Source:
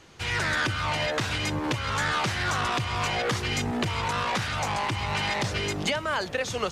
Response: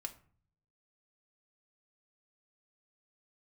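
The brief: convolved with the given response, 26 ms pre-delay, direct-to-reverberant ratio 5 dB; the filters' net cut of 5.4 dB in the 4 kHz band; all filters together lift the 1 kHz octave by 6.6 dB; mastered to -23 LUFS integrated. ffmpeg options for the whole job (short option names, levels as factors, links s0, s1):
-filter_complex "[0:a]equalizer=f=1000:t=o:g=8.5,equalizer=f=4000:t=o:g=-8.5,asplit=2[s0][s1];[1:a]atrim=start_sample=2205,adelay=26[s2];[s1][s2]afir=irnorm=-1:irlink=0,volume=0.75[s3];[s0][s3]amix=inputs=2:normalize=0,volume=1.06"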